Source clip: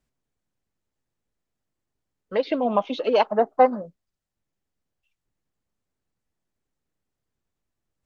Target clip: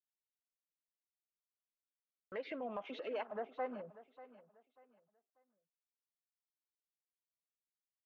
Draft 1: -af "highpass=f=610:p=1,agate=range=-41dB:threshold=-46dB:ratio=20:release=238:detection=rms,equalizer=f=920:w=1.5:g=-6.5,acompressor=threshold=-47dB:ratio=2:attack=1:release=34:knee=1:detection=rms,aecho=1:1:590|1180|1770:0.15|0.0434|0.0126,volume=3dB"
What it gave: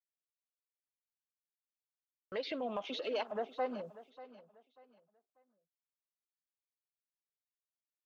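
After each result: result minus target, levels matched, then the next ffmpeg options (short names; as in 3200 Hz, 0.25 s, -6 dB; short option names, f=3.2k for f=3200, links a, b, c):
4000 Hz band +7.5 dB; compressor: peak gain reduction -5 dB
-af "highpass=f=610:p=1,highshelf=f=3k:t=q:w=1.5:g=-13,agate=range=-41dB:threshold=-46dB:ratio=20:release=238:detection=rms,equalizer=f=920:w=1.5:g=-6.5,acompressor=threshold=-47dB:ratio=2:attack=1:release=34:knee=1:detection=rms,aecho=1:1:590|1180|1770:0.15|0.0434|0.0126,volume=3dB"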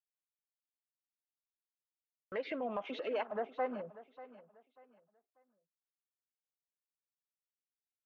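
compressor: peak gain reduction -4.5 dB
-af "highpass=f=610:p=1,highshelf=f=3k:t=q:w=1.5:g=-13,agate=range=-41dB:threshold=-46dB:ratio=20:release=238:detection=rms,equalizer=f=920:w=1.5:g=-6.5,acompressor=threshold=-56dB:ratio=2:attack=1:release=34:knee=1:detection=rms,aecho=1:1:590|1180|1770:0.15|0.0434|0.0126,volume=3dB"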